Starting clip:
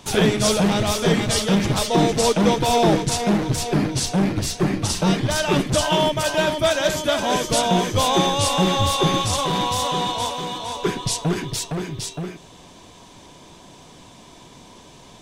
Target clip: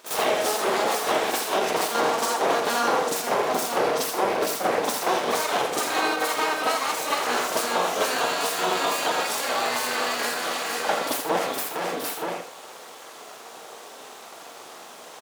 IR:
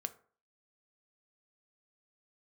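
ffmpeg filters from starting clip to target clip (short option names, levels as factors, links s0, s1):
-filter_complex "[0:a]aeval=exprs='abs(val(0))':c=same,highpass=600,highshelf=f=8000:g=8,acompressor=threshold=0.0355:ratio=6,tiltshelf=f=1300:g=7,aecho=1:1:83:0.376,asplit=2[s0][s1];[1:a]atrim=start_sample=2205,adelay=45[s2];[s1][s2]afir=irnorm=-1:irlink=0,volume=2.82[s3];[s0][s3]amix=inputs=2:normalize=0"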